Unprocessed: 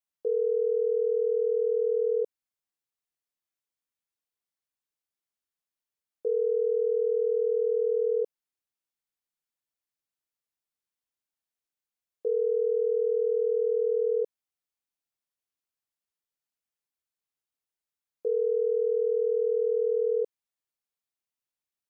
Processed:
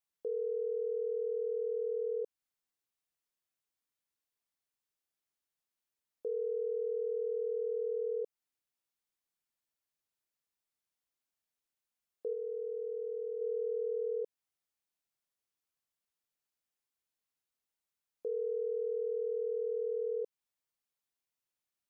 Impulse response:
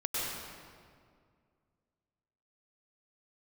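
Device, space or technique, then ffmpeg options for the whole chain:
stacked limiters: -filter_complex "[0:a]alimiter=level_in=2dB:limit=-24dB:level=0:latency=1:release=217,volume=-2dB,alimiter=level_in=5.5dB:limit=-24dB:level=0:latency=1:release=32,volume=-5.5dB,asettb=1/sr,asplit=3[a][b][c];[a]atrim=end=12.334[d];[b]atrim=start=12.33:end=13.41,asetpts=PTS-STARTPTS,afade=t=in:d=0.004:c=qsin,afade=t=out:st=1.076:d=0.004:c=qsin,equalizer=f=510:w=1.5:g=-4[e];[c]atrim=start=13.406[f];[d][e]acrossfade=d=0.004:c1=hsin:c2=qsin[g];[g][f]acrossfade=d=0.004:c1=qsin:c2=hsin"

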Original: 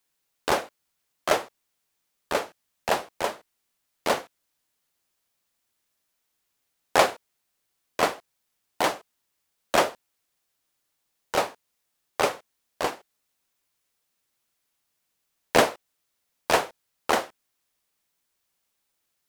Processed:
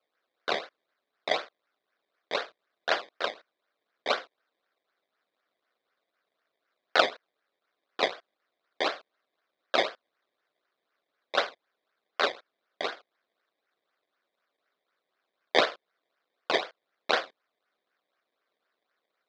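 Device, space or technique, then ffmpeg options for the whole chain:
circuit-bent sampling toy: -af "acrusher=samples=22:mix=1:aa=0.000001:lfo=1:lforange=22:lforate=4,highpass=570,equalizer=f=890:t=q:w=4:g=-10,equalizer=f=1.5k:t=q:w=4:g=4,equalizer=f=2.7k:t=q:w=4:g=-4,equalizer=f=3.8k:t=q:w=4:g=7,lowpass=f=4.5k:w=0.5412,lowpass=f=4.5k:w=1.3066"

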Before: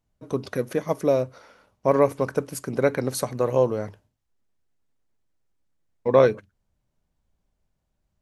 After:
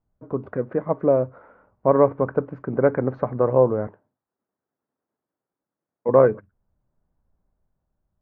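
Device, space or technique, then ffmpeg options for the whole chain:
action camera in a waterproof case: -filter_complex "[0:a]asettb=1/sr,asplit=3[a][b][c];[a]atrim=end=3.874[d];[b]atrim=start=3.87:end=6.09,asetpts=PTS-STARTPTS,afade=t=in:d=0.004:c=qsin,afade=t=out:st=2.216:d=0.004:c=qsin,highpass=230[e];[c]atrim=start=6.086[f];[d][e]acrossfade=d=0.004:c1=hsin:c2=qsin[g];[g][f]acrossfade=d=0.004:c1=qsin:c2=hsin,lowpass=f=1.5k:w=0.5412,lowpass=f=1.5k:w=1.3066,dynaudnorm=f=100:g=17:m=4dB" -ar 16000 -c:a aac -b:a 64k

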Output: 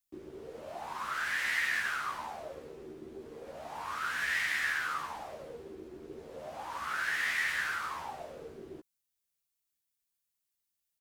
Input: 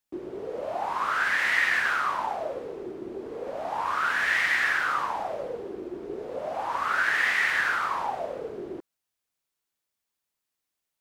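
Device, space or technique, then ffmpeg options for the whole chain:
smiley-face EQ: -filter_complex "[0:a]lowshelf=f=100:g=5.5,equalizer=f=630:t=o:w=2.4:g=-6.5,highshelf=f=6.3k:g=8,asplit=2[a][b];[b]adelay=13,volume=-4dB[c];[a][c]amix=inputs=2:normalize=0,volume=-7.5dB"

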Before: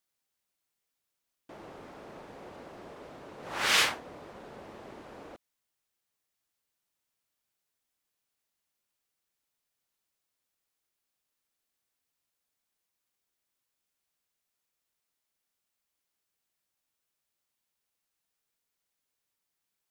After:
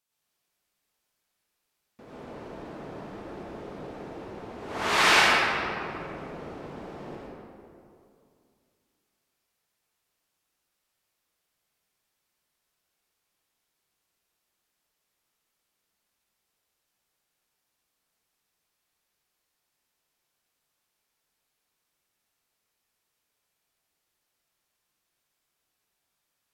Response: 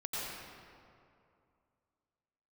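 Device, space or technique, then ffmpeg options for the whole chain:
slowed and reverbed: -filter_complex "[0:a]asetrate=33075,aresample=44100[a];[1:a]atrim=start_sample=2205[b];[a][b]afir=irnorm=-1:irlink=0,volume=3dB"

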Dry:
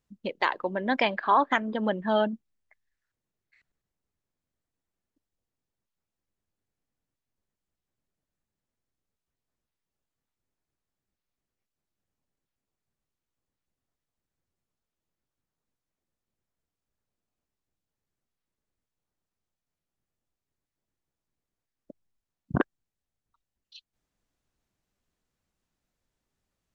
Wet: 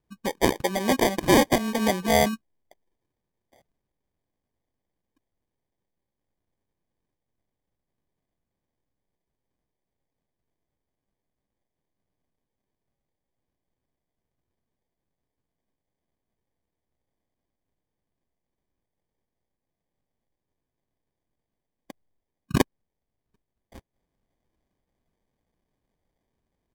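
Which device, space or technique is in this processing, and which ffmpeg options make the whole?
crushed at another speed: -af "asetrate=55125,aresample=44100,acrusher=samples=26:mix=1:aa=0.000001,asetrate=35280,aresample=44100,volume=4dB"

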